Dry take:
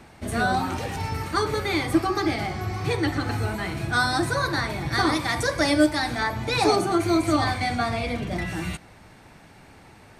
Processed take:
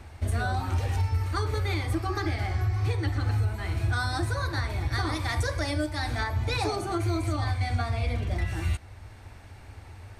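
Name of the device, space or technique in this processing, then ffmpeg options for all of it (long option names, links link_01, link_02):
car stereo with a boomy subwoofer: -filter_complex "[0:a]lowshelf=frequency=120:width_type=q:width=3:gain=9,alimiter=limit=-16.5dB:level=0:latency=1:release=478,asettb=1/sr,asplit=3[link_01][link_02][link_03];[link_01]atrim=end=2.134[link_04];[link_02]atrim=start=2.13:end=2.81,asetpts=PTS-STARTPTS,afade=type=in:duration=0.004:curve=qsin,afade=type=out:start_time=0.676:duration=0.004:curve=qsin,equalizer=frequency=1700:width_type=o:width=0.39:gain=5.5[link_05];[link_03]atrim=start=2.806[link_06];[link_04][link_05]acrossfade=duration=0.004:curve1=hsin:curve2=qsin[link_07];[link_07][link_06]acrossfade=duration=0.004:curve1=qsin:curve2=hsin,volume=-2dB"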